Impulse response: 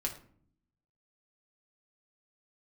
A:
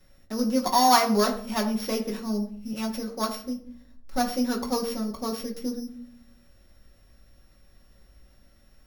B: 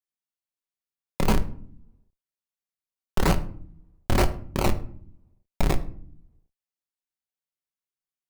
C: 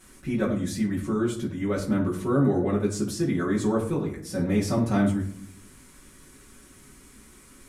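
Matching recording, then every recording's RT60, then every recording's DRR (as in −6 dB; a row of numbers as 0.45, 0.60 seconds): A; 0.55, 0.55, 0.55 seconds; 0.0, 6.5, −7.5 decibels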